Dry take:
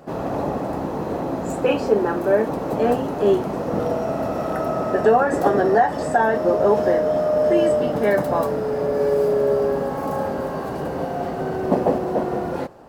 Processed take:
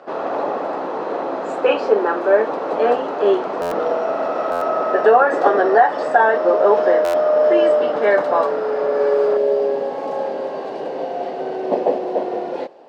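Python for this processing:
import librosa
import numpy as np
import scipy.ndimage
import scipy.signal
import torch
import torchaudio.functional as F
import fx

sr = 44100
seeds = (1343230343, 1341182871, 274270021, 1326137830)

y = fx.peak_eq(x, sr, hz=1300.0, db=fx.steps((0.0, 5.0), (9.37, -9.0)), octaves=0.8)
y = scipy.signal.sosfilt(scipy.signal.cheby1(2, 1.0, [440.0, 3900.0], 'bandpass', fs=sr, output='sos'), y)
y = fx.buffer_glitch(y, sr, at_s=(3.61, 4.51, 7.04), block=512, repeats=8)
y = F.gain(torch.from_numpy(y), 3.5).numpy()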